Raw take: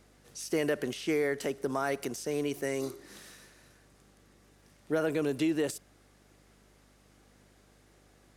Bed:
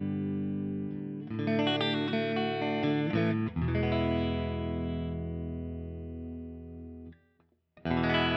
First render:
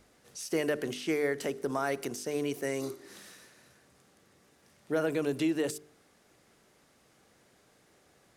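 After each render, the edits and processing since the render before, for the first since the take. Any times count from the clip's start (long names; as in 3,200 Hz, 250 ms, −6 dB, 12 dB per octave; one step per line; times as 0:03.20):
hum removal 50 Hz, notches 9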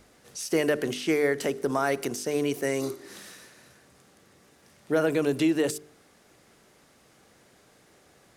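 level +5.5 dB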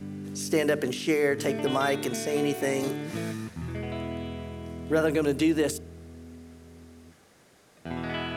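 mix in bed −5 dB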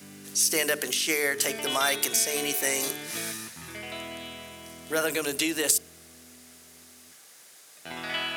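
spectral tilt +4.5 dB per octave
mains-hum notches 60/120/180/240/300/360/420 Hz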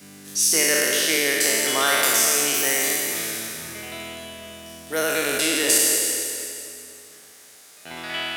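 peak hold with a decay on every bin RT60 2.44 s
echo with a time of its own for lows and highs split 2,000 Hz, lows 244 ms, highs 168 ms, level −10 dB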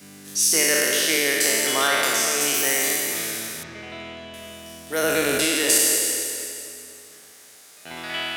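0:01.87–0:02.41: high-shelf EQ 8,400 Hz −9 dB
0:03.63–0:04.34: high-frequency loss of the air 160 metres
0:05.03–0:05.45: low-shelf EQ 430 Hz +7 dB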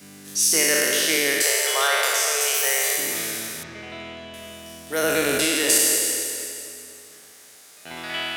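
0:01.42–0:02.98: Butterworth high-pass 400 Hz 96 dB per octave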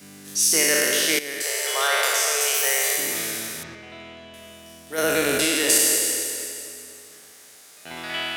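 0:01.19–0:01.99: fade in, from −13.5 dB
0:03.75–0:04.98: clip gain −4.5 dB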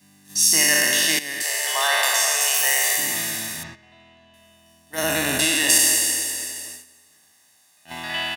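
comb filter 1.1 ms, depth 76%
noise gate −36 dBFS, range −12 dB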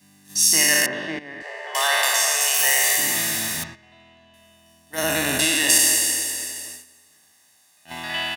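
0:00.86–0:01.75: low-pass filter 1,300 Hz
0:02.59–0:03.64: converter with a step at zero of −27.5 dBFS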